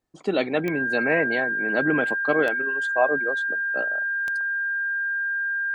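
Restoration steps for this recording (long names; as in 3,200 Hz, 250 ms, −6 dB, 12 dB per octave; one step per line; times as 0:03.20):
click removal
notch filter 1,600 Hz, Q 30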